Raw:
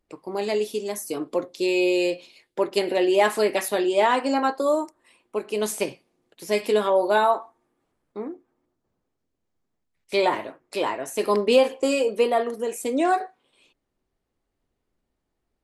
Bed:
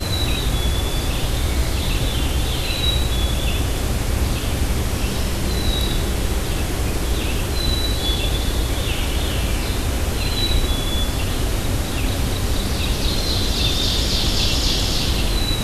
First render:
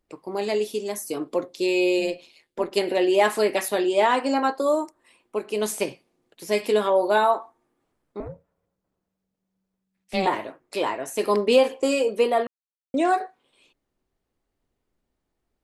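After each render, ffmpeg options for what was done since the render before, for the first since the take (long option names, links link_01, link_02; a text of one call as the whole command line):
ffmpeg -i in.wav -filter_complex "[0:a]asplit=3[link_01][link_02][link_03];[link_01]afade=type=out:start_time=1.98:duration=0.02[link_04];[link_02]tremolo=f=160:d=0.571,afade=type=in:start_time=1.98:duration=0.02,afade=type=out:start_time=2.7:duration=0.02[link_05];[link_03]afade=type=in:start_time=2.7:duration=0.02[link_06];[link_04][link_05][link_06]amix=inputs=3:normalize=0,asettb=1/sr,asplit=3[link_07][link_08][link_09];[link_07]atrim=end=8.204[link_10];[link_08]atrim=start=8.2:end=10.27,asetpts=PTS-STARTPTS,afade=type=in:duration=0.004:curve=qsin,afade=type=out:start_time=2.066:duration=0.004:curve=qsin,aeval=exprs='val(0)*sin(2*PI*190*n/s)':channel_layout=same[link_11];[link_09]atrim=start=10.266[link_12];[link_10][link_11]acrossfade=duration=0.004:curve1=hsin:curve2=qsin[link_13];[link_13][link_12]acrossfade=duration=0.004:curve1=qsin:curve2=hsin,asplit=3[link_14][link_15][link_16];[link_14]atrim=end=12.47,asetpts=PTS-STARTPTS,afade=type=out:start_time=12.466:duration=0.004:curve=hsin[link_17];[link_15]atrim=start=12.47:end=12.94,asetpts=PTS-STARTPTS,volume=0[link_18];[link_16]atrim=start=12.94,asetpts=PTS-STARTPTS,afade=type=in:duration=0.004:curve=hsin[link_19];[link_17][link_18][link_19]concat=n=3:v=0:a=1" out.wav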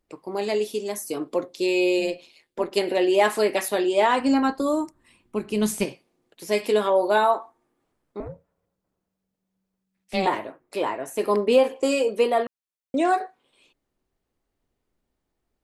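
ffmpeg -i in.wav -filter_complex "[0:a]asplit=3[link_01][link_02][link_03];[link_01]afade=type=out:start_time=4.18:duration=0.02[link_04];[link_02]asubboost=boost=9:cutoff=180,afade=type=in:start_time=4.18:duration=0.02,afade=type=out:start_time=5.84:duration=0.02[link_05];[link_03]afade=type=in:start_time=5.84:duration=0.02[link_06];[link_04][link_05][link_06]amix=inputs=3:normalize=0,asettb=1/sr,asplit=3[link_07][link_08][link_09];[link_07]atrim=end=10.394[link_10];[link_08]atrim=start=10.39:end=11.76,asetpts=PTS-STARTPTS,afade=type=in:duration=0.004:curve=qsin,afade=type=out:start_time=1.366:duration=0.004:curve=qsin,equalizer=frequency=5100:width=0.57:gain=-6[link_11];[link_09]atrim=start=11.756[link_12];[link_10][link_11]acrossfade=duration=0.004:curve1=hsin:curve2=qsin[link_13];[link_13][link_12]acrossfade=duration=0.004:curve1=qsin:curve2=hsin" out.wav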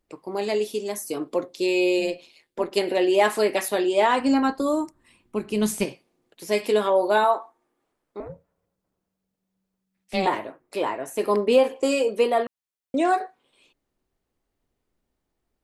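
ffmpeg -i in.wav -filter_complex "[0:a]asettb=1/sr,asplit=3[link_01][link_02][link_03];[link_01]atrim=end=7.244[link_04];[link_02]atrim=start=7.24:end=8.3,asetpts=PTS-STARTPTS,afade=type=in:duration=0.004:curve=qsin,afade=type=out:start_time=1.056:duration=0.004:curve=qsin,bass=frequency=250:gain=-8,treble=frequency=4000:gain=-1[link_05];[link_03]atrim=start=8.296[link_06];[link_04][link_05]acrossfade=duration=0.004:curve1=hsin:curve2=qsin[link_07];[link_07][link_06]acrossfade=duration=0.004:curve1=qsin:curve2=hsin" out.wav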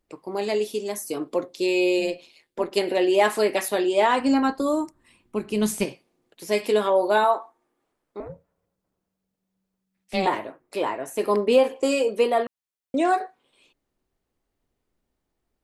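ffmpeg -i in.wav -af anull out.wav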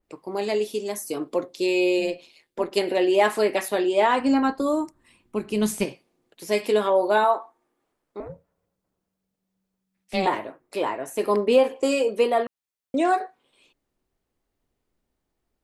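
ffmpeg -i in.wav -af "adynamicequalizer=threshold=0.0141:dfrequency=3500:dqfactor=0.7:tfrequency=3500:tqfactor=0.7:attack=5:release=100:ratio=0.375:range=2:mode=cutabove:tftype=highshelf" out.wav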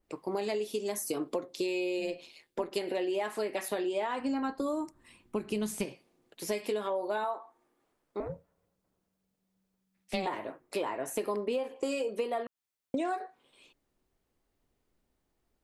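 ffmpeg -i in.wav -af "acompressor=threshold=-29dB:ratio=12" out.wav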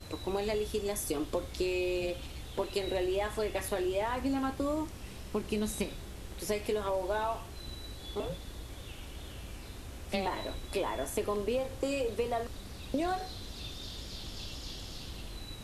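ffmpeg -i in.wav -i bed.wav -filter_complex "[1:a]volume=-23.5dB[link_01];[0:a][link_01]amix=inputs=2:normalize=0" out.wav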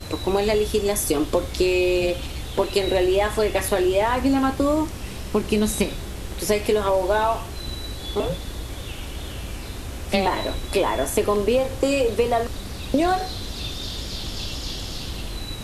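ffmpeg -i in.wav -af "volume=12dB" out.wav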